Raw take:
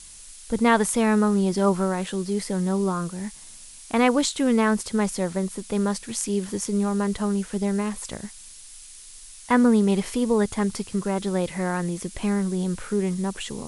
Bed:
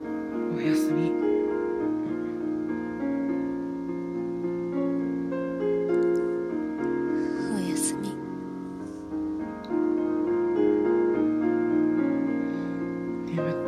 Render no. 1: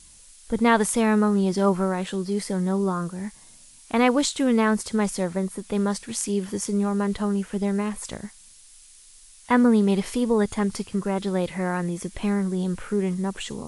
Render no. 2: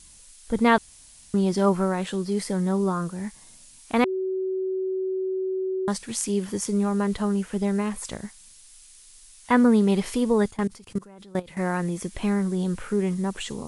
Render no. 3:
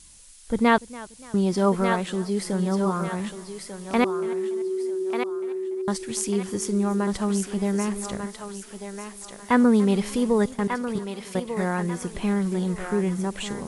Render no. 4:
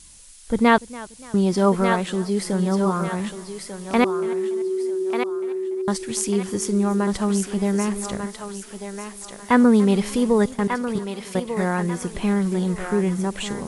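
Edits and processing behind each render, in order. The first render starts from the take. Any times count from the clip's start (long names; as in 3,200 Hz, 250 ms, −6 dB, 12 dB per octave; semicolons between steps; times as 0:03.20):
noise reduction from a noise print 6 dB
0:00.78–0:01.34: fill with room tone; 0:04.04–0:05.88: beep over 377 Hz −24 dBFS; 0:10.48–0:11.57: output level in coarse steps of 23 dB
on a send: feedback echo with a high-pass in the loop 1,193 ms, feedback 34%, high-pass 510 Hz, level −5.5 dB; on the sum: feedback echo with a swinging delay time 288 ms, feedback 44%, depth 106 cents, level −20 dB
level +3 dB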